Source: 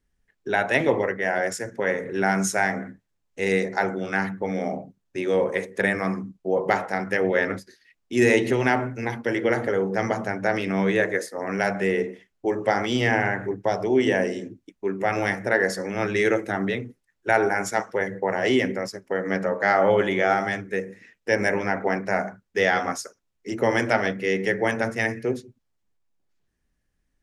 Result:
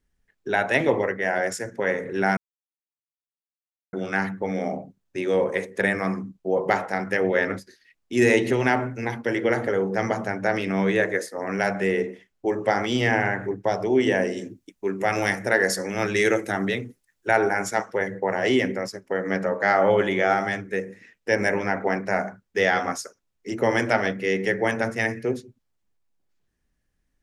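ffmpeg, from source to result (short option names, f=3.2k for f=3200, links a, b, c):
-filter_complex "[0:a]asettb=1/sr,asplit=3[a][b][c];[a]atrim=end=14.374[d];[b]atrim=start=14.37:end=17.28,asetpts=PTS-STARTPTS,afade=t=in:d=0.004:c=qsin,afade=t=out:st=2.906:d=0.004:c=qsin,highshelf=f=4.5k:g=10[e];[c]atrim=start=17.276[f];[d][e]acrossfade=d=0.004:c1=hsin:c2=qsin[g];[g][f]acrossfade=d=0.004:c1=qsin:c2=hsin,asplit=3[h][i][j];[h]atrim=end=2.37,asetpts=PTS-STARTPTS,afade=t=out:st=2.366:d=0.004:c=hsin[k];[i]atrim=start=2.37:end=3.93,asetpts=PTS-STARTPTS,volume=0[l];[j]atrim=start=3.93,asetpts=PTS-STARTPTS,afade=t=in:d=0.004:c=hsin[m];[k][l][m]concat=n=3:v=0:a=1"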